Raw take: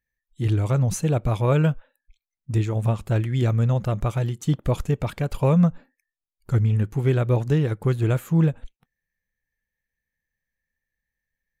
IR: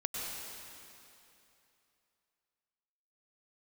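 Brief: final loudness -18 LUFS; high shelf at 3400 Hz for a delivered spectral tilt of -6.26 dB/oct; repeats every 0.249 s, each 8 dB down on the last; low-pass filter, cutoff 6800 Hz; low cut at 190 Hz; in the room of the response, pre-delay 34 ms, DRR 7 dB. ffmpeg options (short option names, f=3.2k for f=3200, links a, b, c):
-filter_complex "[0:a]highpass=190,lowpass=6.8k,highshelf=f=3.4k:g=7.5,aecho=1:1:249|498|747|996|1245:0.398|0.159|0.0637|0.0255|0.0102,asplit=2[a][b];[1:a]atrim=start_sample=2205,adelay=34[c];[b][c]afir=irnorm=-1:irlink=0,volume=-10.5dB[d];[a][d]amix=inputs=2:normalize=0,volume=8dB"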